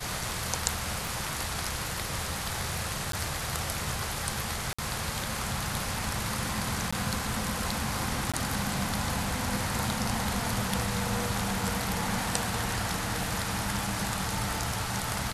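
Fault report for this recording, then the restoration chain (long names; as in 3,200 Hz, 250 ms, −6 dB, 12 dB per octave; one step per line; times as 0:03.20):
0:01.07: click
0:03.12–0:03.13: drop-out 13 ms
0:04.73–0:04.79: drop-out 55 ms
0:06.91–0:06.92: drop-out 15 ms
0:08.32–0:08.34: drop-out 16 ms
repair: click removal
repair the gap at 0:03.12, 13 ms
repair the gap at 0:04.73, 55 ms
repair the gap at 0:06.91, 15 ms
repair the gap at 0:08.32, 16 ms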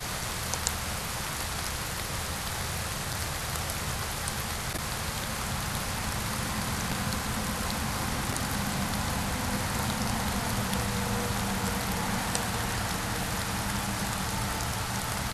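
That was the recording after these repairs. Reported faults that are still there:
0:01.07: click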